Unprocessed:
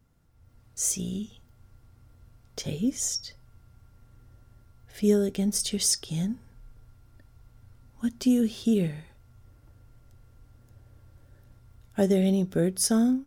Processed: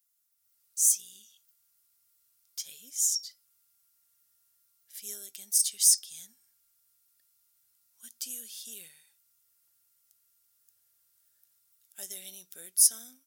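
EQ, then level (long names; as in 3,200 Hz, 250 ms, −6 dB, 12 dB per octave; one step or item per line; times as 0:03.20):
first-order pre-emphasis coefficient 0.97
spectral tilt +3 dB per octave
−5.0 dB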